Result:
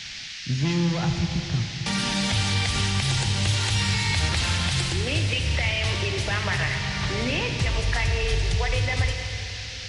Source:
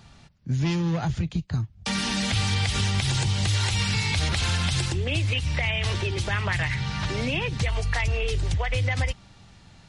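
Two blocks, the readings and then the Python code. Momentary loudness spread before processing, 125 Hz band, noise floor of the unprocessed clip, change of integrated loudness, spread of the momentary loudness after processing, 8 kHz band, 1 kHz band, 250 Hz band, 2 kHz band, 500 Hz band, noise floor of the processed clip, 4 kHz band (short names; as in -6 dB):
5 LU, +0.5 dB, -52 dBFS, +1.0 dB, 4 LU, +2.5 dB, +1.5 dB, +1.0 dB, +2.0 dB, +1.5 dB, -36 dBFS, +3.0 dB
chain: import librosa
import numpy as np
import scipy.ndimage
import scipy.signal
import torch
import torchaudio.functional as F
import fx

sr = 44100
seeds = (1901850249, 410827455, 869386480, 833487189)

y = fx.rev_schroeder(x, sr, rt60_s=3.3, comb_ms=29, drr_db=4.0)
y = fx.dmg_noise_band(y, sr, seeds[0], low_hz=1700.0, high_hz=5700.0, level_db=-37.0)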